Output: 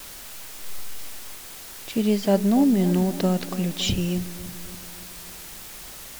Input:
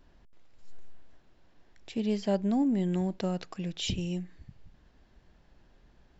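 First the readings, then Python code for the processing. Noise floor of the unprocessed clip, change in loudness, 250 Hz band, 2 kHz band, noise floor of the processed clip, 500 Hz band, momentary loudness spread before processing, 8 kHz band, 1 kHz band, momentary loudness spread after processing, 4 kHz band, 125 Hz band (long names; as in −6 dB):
−63 dBFS, +8.0 dB, +8.5 dB, +10.0 dB, −40 dBFS, +8.5 dB, 11 LU, can't be measured, +8.5 dB, 18 LU, +9.0 dB, +8.5 dB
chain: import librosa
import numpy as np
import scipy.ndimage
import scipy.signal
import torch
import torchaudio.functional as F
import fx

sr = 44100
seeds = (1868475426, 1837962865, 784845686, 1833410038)

y = fx.quant_dither(x, sr, seeds[0], bits=8, dither='triangular')
y = fx.vibrato(y, sr, rate_hz=0.35, depth_cents=6.2)
y = fx.echo_bbd(y, sr, ms=282, stages=2048, feedback_pct=57, wet_db=-14)
y = y * librosa.db_to_amplitude(8.0)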